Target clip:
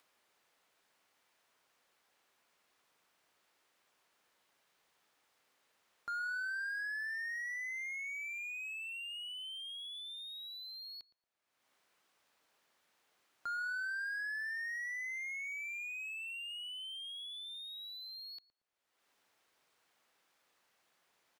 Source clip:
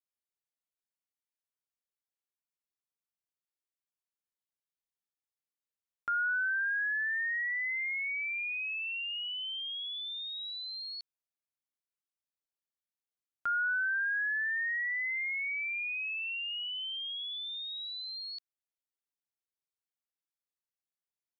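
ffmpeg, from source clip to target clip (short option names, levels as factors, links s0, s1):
-filter_complex "[0:a]asplit=2[s0][s1];[s1]highpass=f=720:p=1,volume=11.2,asoftclip=type=tanh:threshold=0.0473[s2];[s0][s2]amix=inputs=2:normalize=0,lowpass=f=1400:p=1,volume=0.501,asplit=2[s3][s4];[s4]adelay=115,lowpass=f=890:p=1,volume=0.316,asplit=2[s5][s6];[s6]adelay=115,lowpass=f=890:p=1,volume=0.34,asplit=2[s7][s8];[s8]adelay=115,lowpass=f=890:p=1,volume=0.34,asplit=2[s9][s10];[s10]adelay=115,lowpass=f=890:p=1,volume=0.34[s11];[s3][s5][s7][s9][s11]amix=inputs=5:normalize=0,acompressor=mode=upward:threshold=0.00251:ratio=2.5,volume=0.501"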